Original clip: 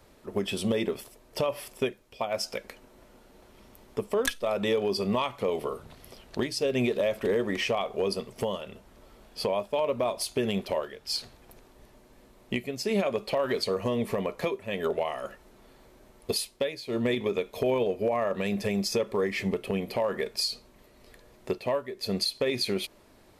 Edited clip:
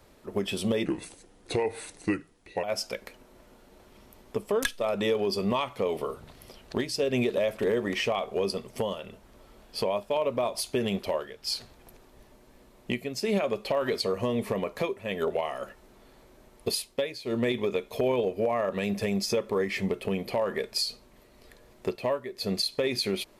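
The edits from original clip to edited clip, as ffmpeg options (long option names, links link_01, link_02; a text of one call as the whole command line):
ffmpeg -i in.wav -filter_complex "[0:a]asplit=3[link_01][link_02][link_03];[link_01]atrim=end=0.854[link_04];[link_02]atrim=start=0.85:end=2.26,asetpts=PTS-STARTPTS,asetrate=34839,aresample=44100,atrim=end_sample=78710,asetpts=PTS-STARTPTS[link_05];[link_03]atrim=start=2.256[link_06];[link_04][link_05]acrossfade=duration=0.004:curve1=hsin:curve2=hsin[link_07];[link_07][link_06]acrossfade=duration=0.004:curve1=hsin:curve2=hsin" out.wav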